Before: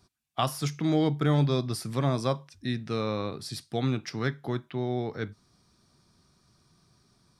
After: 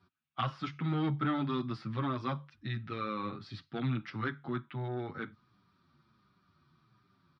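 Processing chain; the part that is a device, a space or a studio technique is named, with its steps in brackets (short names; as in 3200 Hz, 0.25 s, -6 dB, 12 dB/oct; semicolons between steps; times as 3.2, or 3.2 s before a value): barber-pole flanger into a guitar amplifier (endless flanger 7.9 ms -1.4 Hz; soft clip -24 dBFS, distortion -16 dB; speaker cabinet 85–3500 Hz, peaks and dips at 450 Hz -9 dB, 670 Hz -8 dB, 1300 Hz +8 dB)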